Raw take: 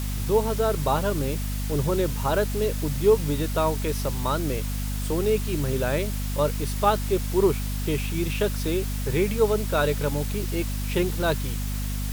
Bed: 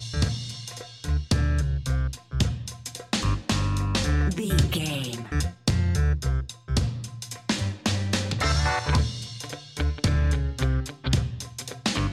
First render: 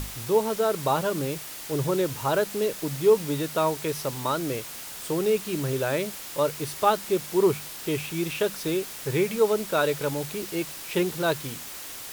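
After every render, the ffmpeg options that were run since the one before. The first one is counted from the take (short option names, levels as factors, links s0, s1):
-af "bandreject=f=50:t=h:w=6,bandreject=f=100:t=h:w=6,bandreject=f=150:t=h:w=6,bandreject=f=200:t=h:w=6,bandreject=f=250:t=h:w=6"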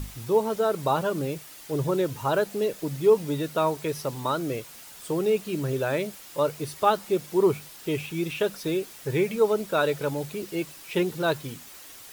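-af "afftdn=nr=8:nf=-39"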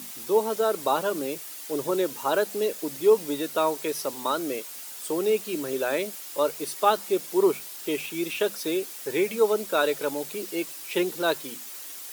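-af "highpass=f=230:w=0.5412,highpass=f=230:w=1.3066,highshelf=f=4600:g=7.5"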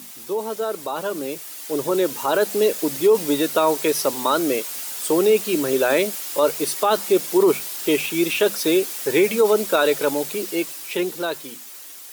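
-af "alimiter=limit=0.141:level=0:latency=1:release=16,dynaudnorm=f=220:g=17:m=2.82"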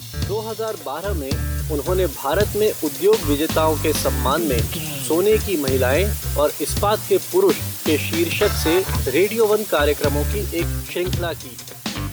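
-filter_complex "[1:a]volume=0.891[s0];[0:a][s0]amix=inputs=2:normalize=0"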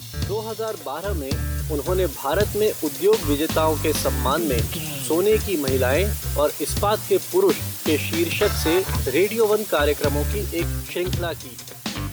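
-af "volume=0.794"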